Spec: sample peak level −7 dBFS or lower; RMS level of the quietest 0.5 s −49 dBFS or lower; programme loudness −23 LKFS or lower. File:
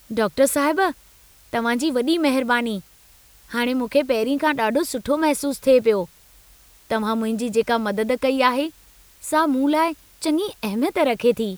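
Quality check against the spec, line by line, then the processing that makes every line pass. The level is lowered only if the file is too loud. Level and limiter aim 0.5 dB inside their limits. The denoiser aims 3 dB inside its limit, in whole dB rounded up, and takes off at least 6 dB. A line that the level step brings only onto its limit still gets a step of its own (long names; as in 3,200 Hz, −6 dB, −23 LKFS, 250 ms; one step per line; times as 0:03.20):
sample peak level −3.0 dBFS: out of spec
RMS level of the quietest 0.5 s −52 dBFS: in spec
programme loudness −21.0 LKFS: out of spec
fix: level −2.5 dB
brickwall limiter −7.5 dBFS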